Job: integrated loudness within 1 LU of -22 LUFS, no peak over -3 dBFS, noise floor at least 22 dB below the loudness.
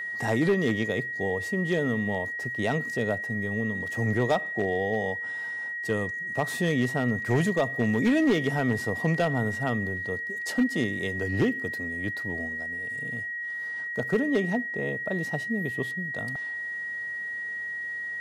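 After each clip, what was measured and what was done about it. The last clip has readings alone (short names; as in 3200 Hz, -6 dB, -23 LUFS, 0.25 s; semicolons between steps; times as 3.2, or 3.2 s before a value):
clipped 0.5%; flat tops at -17.0 dBFS; steady tone 1900 Hz; tone level -31 dBFS; loudness -28.0 LUFS; peak -17.0 dBFS; loudness target -22.0 LUFS
-> clip repair -17 dBFS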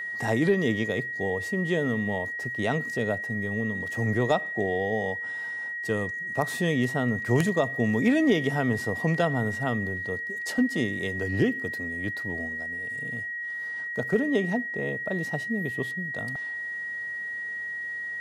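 clipped 0.0%; steady tone 1900 Hz; tone level -31 dBFS
-> notch 1900 Hz, Q 30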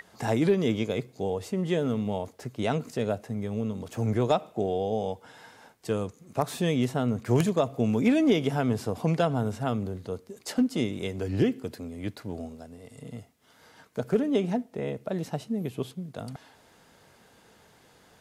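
steady tone none; loudness -28.5 LUFS; peak -8.0 dBFS; loudness target -22.0 LUFS
-> gain +6.5 dB; limiter -3 dBFS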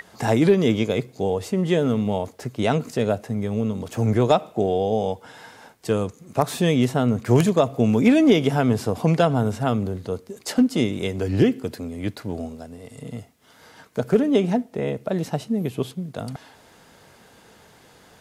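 loudness -22.5 LUFS; peak -3.0 dBFS; noise floor -52 dBFS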